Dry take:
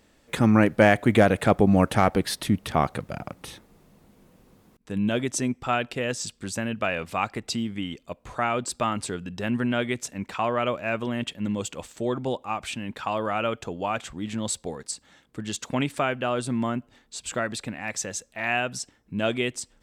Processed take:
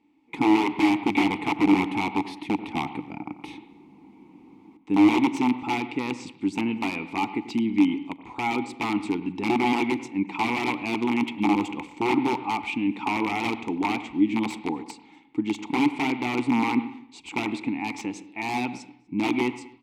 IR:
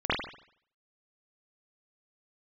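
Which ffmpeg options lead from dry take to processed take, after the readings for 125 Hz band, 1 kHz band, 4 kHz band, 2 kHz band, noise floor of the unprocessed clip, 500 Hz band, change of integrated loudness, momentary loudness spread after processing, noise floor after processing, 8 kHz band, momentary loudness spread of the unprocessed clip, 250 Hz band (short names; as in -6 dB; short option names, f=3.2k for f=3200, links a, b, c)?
-9.0 dB, +1.0 dB, -1.5 dB, -0.5 dB, -62 dBFS, -5.5 dB, +0.5 dB, 12 LU, -53 dBFS, -12.0 dB, 15 LU, +3.5 dB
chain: -filter_complex "[0:a]dynaudnorm=f=250:g=3:m=12dB,aeval=exprs='(mod(2.99*val(0)+1,2)-1)/2.99':c=same,asplit=3[a][b][c];[a]bandpass=f=300:t=q:w=8,volume=0dB[d];[b]bandpass=f=870:t=q:w=8,volume=-6dB[e];[c]bandpass=f=2.24k:t=q:w=8,volume=-9dB[f];[d][e][f]amix=inputs=3:normalize=0,asplit=2[g][h];[h]adelay=244.9,volume=-27dB,highshelf=f=4k:g=-5.51[i];[g][i]amix=inputs=2:normalize=0,asplit=2[j][k];[1:a]atrim=start_sample=2205,adelay=41[l];[k][l]afir=irnorm=-1:irlink=0,volume=-25.5dB[m];[j][m]amix=inputs=2:normalize=0,volume=6.5dB"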